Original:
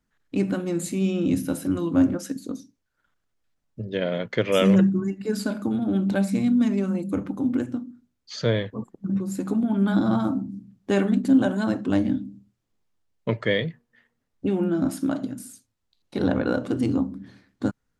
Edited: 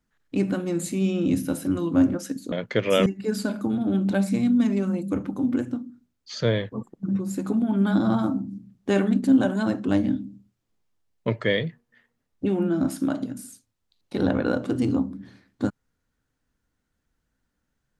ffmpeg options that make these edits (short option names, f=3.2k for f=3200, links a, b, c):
-filter_complex "[0:a]asplit=3[a][b][c];[a]atrim=end=2.522[d];[b]atrim=start=4.138:end=4.682[e];[c]atrim=start=5.068[f];[d][e]acrossfade=d=0.004:c1=hsin:c2=hsin[g];[g][f]acrossfade=d=0.004:c1=hsin:c2=hsin"